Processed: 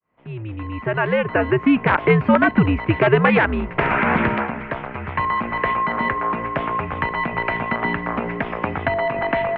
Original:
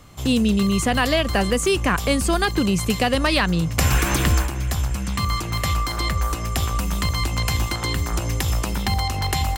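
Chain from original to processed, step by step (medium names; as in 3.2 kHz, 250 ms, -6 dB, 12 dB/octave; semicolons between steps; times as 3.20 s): fade-in on the opening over 2.15 s; integer overflow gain 8.5 dB; mistuned SSB -110 Hz 250–2400 Hz; trim +7.5 dB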